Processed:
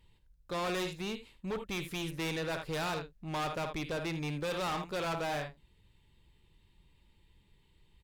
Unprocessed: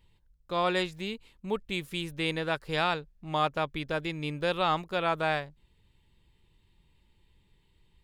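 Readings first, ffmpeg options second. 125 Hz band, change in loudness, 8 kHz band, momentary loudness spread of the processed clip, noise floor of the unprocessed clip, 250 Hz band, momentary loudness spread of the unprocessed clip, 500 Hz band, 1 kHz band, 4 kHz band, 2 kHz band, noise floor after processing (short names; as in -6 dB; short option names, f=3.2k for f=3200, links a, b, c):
-2.5 dB, -5.5 dB, +5.5 dB, 6 LU, -68 dBFS, -3.0 dB, 8 LU, -5.0 dB, -7.0 dB, -5.5 dB, -6.0 dB, -68 dBFS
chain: -af "aecho=1:1:55|79:0.211|0.178,volume=32dB,asoftclip=hard,volume=-32dB" -ar 48000 -c:a libopus -b:a 256k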